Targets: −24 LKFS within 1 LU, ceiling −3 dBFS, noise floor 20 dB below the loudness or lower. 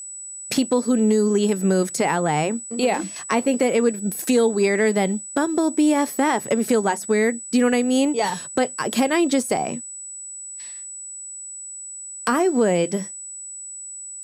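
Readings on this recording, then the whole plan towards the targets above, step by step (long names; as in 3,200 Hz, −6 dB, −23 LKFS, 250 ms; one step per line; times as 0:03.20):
interfering tone 7,900 Hz; level of the tone −33 dBFS; integrated loudness −21.0 LKFS; sample peak −7.0 dBFS; target loudness −24.0 LKFS
→ notch filter 7,900 Hz, Q 30
level −3 dB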